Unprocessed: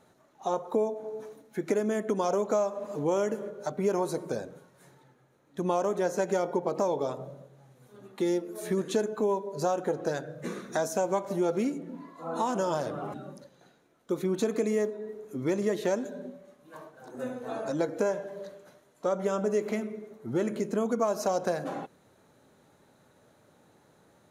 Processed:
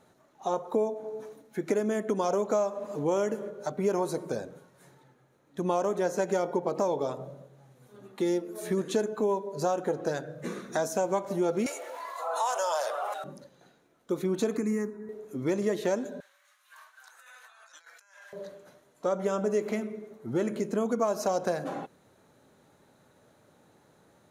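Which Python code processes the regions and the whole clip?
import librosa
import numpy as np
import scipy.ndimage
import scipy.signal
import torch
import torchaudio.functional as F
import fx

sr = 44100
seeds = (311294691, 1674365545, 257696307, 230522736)

y = fx.chain(x, sr, fx.steep_highpass(hz=560.0, slope=36),
    fx.high_shelf(hz=6300.0, db=8.0),
    fx.env_flatten(amount_pct=50), at=(11.66, 13.24))
y = fx.chain(y, sr, fx.low_shelf(hz=330.0, db=6.0),
    fx.fixed_phaser(hz=1400.0, stages=4), at=(14.57, 15.09))
y = fx.chain(y, sr, fx.highpass(hz=1300.0, slope=24),
    fx.over_compress(threshold_db=-55.0, ratio=-1.0), at=(16.2, 18.33))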